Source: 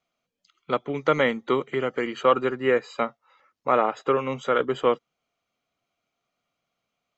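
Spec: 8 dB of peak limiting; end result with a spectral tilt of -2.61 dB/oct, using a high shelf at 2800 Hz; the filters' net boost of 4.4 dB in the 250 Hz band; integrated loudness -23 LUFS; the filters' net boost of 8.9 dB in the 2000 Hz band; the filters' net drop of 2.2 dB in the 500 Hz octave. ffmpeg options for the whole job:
-af "equalizer=f=250:t=o:g=6.5,equalizer=f=500:t=o:g=-5,equalizer=f=2k:t=o:g=8,highshelf=f=2.8k:g=7,volume=1.5dB,alimiter=limit=-9dB:level=0:latency=1"

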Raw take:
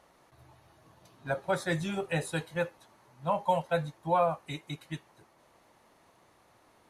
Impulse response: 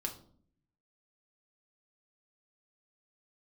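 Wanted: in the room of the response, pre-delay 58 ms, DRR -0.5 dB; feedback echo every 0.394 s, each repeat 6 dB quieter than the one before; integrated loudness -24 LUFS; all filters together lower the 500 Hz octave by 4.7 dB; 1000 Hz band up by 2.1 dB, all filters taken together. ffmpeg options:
-filter_complex "[0:a]equalizer=f=500:t=o:g=-7.5,equalizer=f=1k:t=o:g=5,aecho=1:1:394|788|1182|1576|1970|2364:0.501|0.251|0.125|0.0626|0.0313|0.0157,asplit=2[a][b];[1:a]atrim=start_sample=2205,adelay=58[c];[b][c]afir=irnorm=-1:irlink=0,volume=0dB[d];[a][d]amix=inputs=2:normalize=0,volume=4.5dB"

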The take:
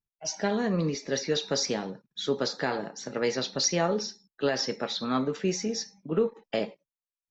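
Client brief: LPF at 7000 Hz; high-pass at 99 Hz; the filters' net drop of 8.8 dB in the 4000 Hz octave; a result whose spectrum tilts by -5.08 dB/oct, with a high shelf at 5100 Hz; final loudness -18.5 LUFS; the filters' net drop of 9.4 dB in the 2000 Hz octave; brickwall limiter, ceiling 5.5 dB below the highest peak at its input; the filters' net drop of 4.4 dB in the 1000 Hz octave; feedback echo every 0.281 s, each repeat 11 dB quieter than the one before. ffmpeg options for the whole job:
-af "highpass=99,lowpass=7k,equalizer=f=1k:t=o:g=-3.5,equalizer=f=2k:t=o:g=-9,equalizer=f=4k:t=o:g=-7,highshelf=f=5.1k:g=-3,alimiter=limit=-21dB:level=0:latency=1,aecho=1:1:281|562|843:0.282|0.0789|0.0221,volume=14.5dB"

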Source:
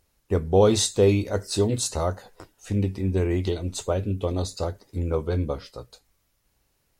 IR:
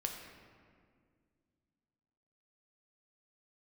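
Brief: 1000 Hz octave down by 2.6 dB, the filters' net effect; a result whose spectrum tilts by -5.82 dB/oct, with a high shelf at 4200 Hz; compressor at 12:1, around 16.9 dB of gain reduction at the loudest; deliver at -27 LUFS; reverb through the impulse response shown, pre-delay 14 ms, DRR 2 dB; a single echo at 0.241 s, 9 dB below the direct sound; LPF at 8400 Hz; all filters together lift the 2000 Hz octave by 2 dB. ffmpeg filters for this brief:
-filter_complex "[0:a]lowpass=8.4k,equalizer=f=1k:t=o:g=-4.5,equalizer=f=2k:t=o:g=6,highshelf=f=4.2k:g=-8.5,acompressor=threshold=-31dB:ratio=12,aecho=1:1:241:0.355,asplit=2[a][b];[1:a]atrim=start_sample=2205,adelay=14[c];[b][c]afir=irnorm=-1:irlink=0,volume=-2.5dB[d];[a][d]amix=inputs=2:normalize=0,volume=7dB"

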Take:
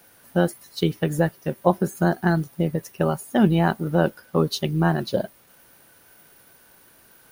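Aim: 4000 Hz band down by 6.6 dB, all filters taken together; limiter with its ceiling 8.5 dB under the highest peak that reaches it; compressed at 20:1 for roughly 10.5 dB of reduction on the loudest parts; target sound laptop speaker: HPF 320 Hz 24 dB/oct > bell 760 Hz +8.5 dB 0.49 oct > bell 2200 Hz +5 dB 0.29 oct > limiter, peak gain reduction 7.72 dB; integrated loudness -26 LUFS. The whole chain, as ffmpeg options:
-af "equalizer=f=4k:t=o:g=-9,acompressor=threshold=-23dB:ratio=20,alimiter=limit=-20dB:level=0:latency=1,highpass=f=320:w=0.5412,highpass=f=320:w=1.3066,equalizer=f=760:t=o:w=0.49:g=8.5,equalizer=f=2.2k:t=o:w=0.29:g=5,volume=12dB,alimiter=limit=-13.5dB:level=0:latency=1"

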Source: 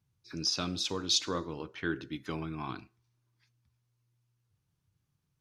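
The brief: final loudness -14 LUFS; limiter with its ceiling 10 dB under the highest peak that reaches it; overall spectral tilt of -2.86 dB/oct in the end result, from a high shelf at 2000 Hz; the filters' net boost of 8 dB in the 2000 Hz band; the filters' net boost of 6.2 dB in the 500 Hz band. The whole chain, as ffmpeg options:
-af "equalizer=f=500:t=o:g=7,highshelf=f=2k:g=5.5,equalizer=f=2k:t=o:g=7.5,volume=18dB,alimiter=limit=-1.5dB:level=0:latency=1"

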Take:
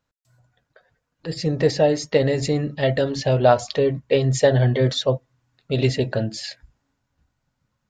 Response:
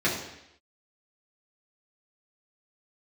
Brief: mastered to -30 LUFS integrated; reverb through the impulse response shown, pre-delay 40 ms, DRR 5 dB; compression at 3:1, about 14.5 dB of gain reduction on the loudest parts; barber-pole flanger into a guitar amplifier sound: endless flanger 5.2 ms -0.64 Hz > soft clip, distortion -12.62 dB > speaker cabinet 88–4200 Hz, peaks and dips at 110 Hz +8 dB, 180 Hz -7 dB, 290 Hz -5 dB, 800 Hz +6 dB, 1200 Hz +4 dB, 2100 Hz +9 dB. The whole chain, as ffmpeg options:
-filter_complex "[0:a]acompressor=threshold=-31dB:ratio=3,asplit=2[a][b];[1:a]atrim=start_sample=2205,adelay=40[c];[b][c]afir=irnorm=-1:irlink=0,volume=-18.5dB[d];[a][d]amix=inputs=2:normalize=0,asplit=2[e][f];[f]adelay=5.2,afreqshift=-0.64[g];[e][g]amix=inputs=2:normalize=1,asoftclip=threshold=-28.5dB,highpass=88,equalizer=f=110:t=q:w=4:g=8,equalizer=f=180:t=q:w=4:g=-7,equalizer=f=290:t=q:w=4:g=-5,equalizer=f=800:t=q:w=4:g=6,equalizer=f=1.2k:t=q:w=4:g=4,equalizer=f=2.1k:t=q:w=4:g=9,lowpass=f=4.2k:w=0.5412,lowpass=f=4.2k:w=1.3066,volume=5.5dB"

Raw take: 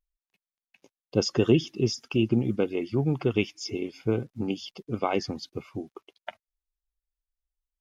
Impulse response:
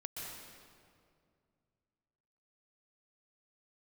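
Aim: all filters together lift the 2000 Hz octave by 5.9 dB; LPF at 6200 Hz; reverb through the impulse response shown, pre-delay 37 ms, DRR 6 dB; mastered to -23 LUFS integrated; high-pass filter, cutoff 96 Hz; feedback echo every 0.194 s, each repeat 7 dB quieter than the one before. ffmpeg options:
-filter_complex "[0:a]highpass=96,lowpass=6.2k,equalizer=f=2k:t=o:g=8.5,aecho=1:1:194|388|582|776|970:0.447|0.201|0.0905|0.0407|0.0183,asplit=2[a][b];[1:a]atrim=start_sample=2205,adelay=37[c];[b][c]afir=irnorm=-1:irlink=0,volume=-5.5dB[d];[a][d]amix=inputs=2:normalize=0,volume=2.5dB"

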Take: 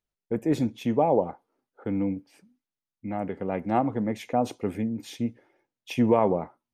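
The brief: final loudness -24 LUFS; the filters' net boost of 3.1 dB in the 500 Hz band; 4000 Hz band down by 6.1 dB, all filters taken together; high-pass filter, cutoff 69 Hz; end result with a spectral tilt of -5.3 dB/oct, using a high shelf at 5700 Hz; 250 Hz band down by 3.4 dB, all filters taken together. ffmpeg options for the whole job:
-af "highpass=69,equalizer=f=250:t=o:g=-5.5,equalizer=f=500:t=o:g=5,equalizer=f=4k:t=o:g=-6,highshelf=f=5.7k:g=-5.5,volume=2.5dB"

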